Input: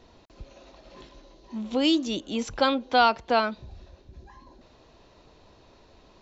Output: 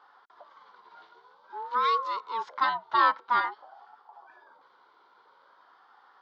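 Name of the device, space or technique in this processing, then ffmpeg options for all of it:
voice changer toy: -af "aeval=exprs='val(0)*sin(2*PI*590*n/s+590*0.35/0.5*sin(2*PI*0.5*n/s))':c=same,highpass=600,equalizer=f=650:t=q:w=4:g=-7,equalizer=f=970:t=q:w=4:g=9,equalizer=f=1.4k:t=q:w=4:g=8,equalizer=f=2.6k:t=q:w=4:g=-10,lowpass=f=4.1k:w=0.5412,lowpass=f=4.1k:w=1.3066,volume=-2.5dB"

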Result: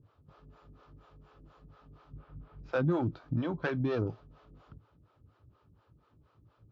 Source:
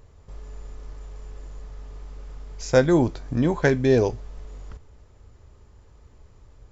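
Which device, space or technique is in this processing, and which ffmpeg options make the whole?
guitar amplifier with harmonic tremolo: -filter_complex "[0:a]asettb=1/sr,asplit=3[a][b][c];[a]atrim=end=2.134[d];[b]atrim=start=2.13:end=2.73,asetpts=PTS-STARTPTS,afade=t=in:d=0.004:c=qsin,afade=t=out:st=0.596:d=0.004:c=qsin,bass=f=250:g=9,treble=f=4k:g=-15[e];[c]atrim=start=2.726[f];[d][e]acrossfade=d=0.004:c1=hsin:c2=qsin[g];[g][f]acrossfade=d=0.004:c1=qsin:c2=hsin,acrossover=split=400[h][i];[h]aeval=exprs='val(0)*(1-1/2+1/2*cos(2*PI*4.2*n/s))':c=same[j];[i]aeval=exprs='val(0)*(1-1/2-1/2*cos(2*PI*4.2*n/s))':c=same[k];[j][k]amix=inputs=2:normalize=0,asoftclip=type=tanh:threshold=-19dB,highpass=100,equalizer=f=110:t=q:w=4:g=7,equalizer=f=160:t=q:w=4:g=7,equalizer=f=300:t=q:w=4:g=6,equalizer=f=430:t=q:w=4:g=-4,equalizer=f=1.3k:t=q:w=4:g=8,equalizer=f=2k:t=q:w=4:g=-8,lowpass=f=4k:w=0.5412,lowpass=f=4k:w=1.3066,volume=-5dB"

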